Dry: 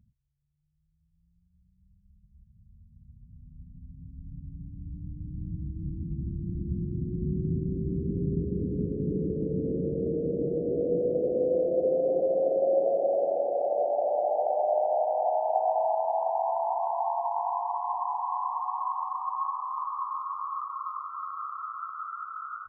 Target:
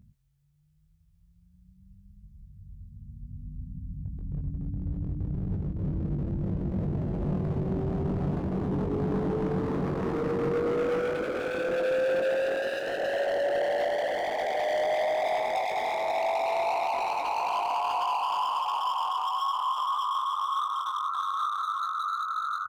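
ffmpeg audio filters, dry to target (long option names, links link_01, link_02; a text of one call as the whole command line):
ffmpeg -i in.wav -filter_complex "[0:a]asplit=2[link_01][link_02];[link_02]acompressor=threshold=-35dB:ratio=6,volume=-0.5dB[link_03];[link_01][link_03]amix=inputs=2:normalize=0,asoftclip=type=hard:threshold=-29.5dB,asplit=2[link_04][link_05];[link_05]adelay=21,volume=-5dB[link_06];[link_04][link_06]amix=inputs=2:normalize=0,volume=2dB" out.wav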